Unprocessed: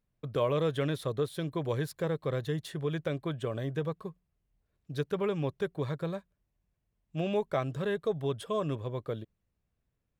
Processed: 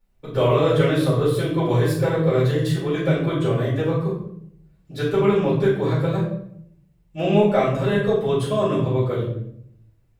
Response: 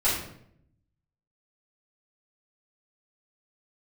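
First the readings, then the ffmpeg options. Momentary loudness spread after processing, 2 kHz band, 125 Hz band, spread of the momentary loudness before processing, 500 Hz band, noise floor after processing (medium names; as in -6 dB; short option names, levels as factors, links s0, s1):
10 LU, +12.0 dB, +13.5 dB, 7 LU, +12.0 dB, -59 dBFS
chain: -filter_complex "[1:a]atrim=start_sample=2205[s0];[0:a][s0]afir=irnorm=-1:irlink=0"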